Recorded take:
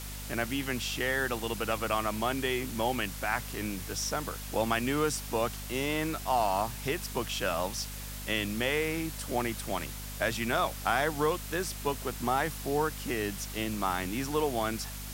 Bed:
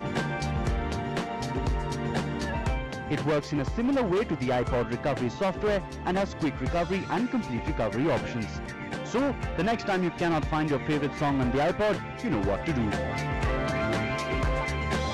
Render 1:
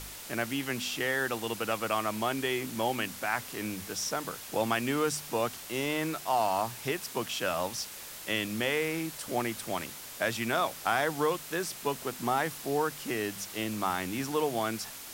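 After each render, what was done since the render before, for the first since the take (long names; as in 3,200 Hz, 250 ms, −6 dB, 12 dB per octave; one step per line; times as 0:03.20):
hum removal 50 Hz, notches 5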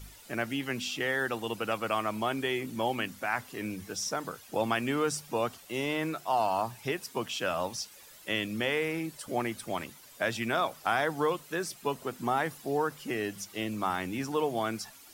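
broadband denoise 12 dB, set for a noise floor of −44 dBFS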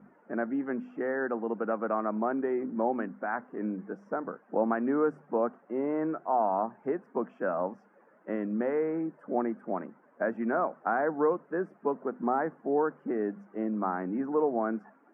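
elliptic band-pass filter 200–1,600 Hz, stop band 40 dB
tilt shelving filter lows +5.5 dB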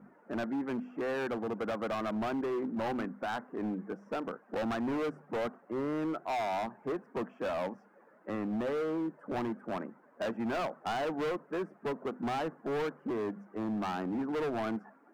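gain into a clipping stage and back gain 30.5 dB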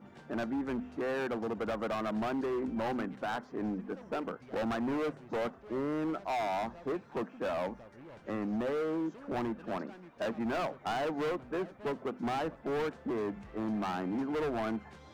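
mix in bed −25.5 dB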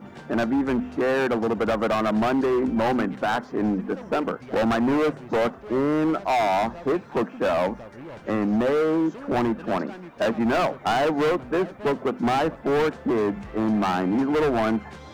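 level +11.5 dB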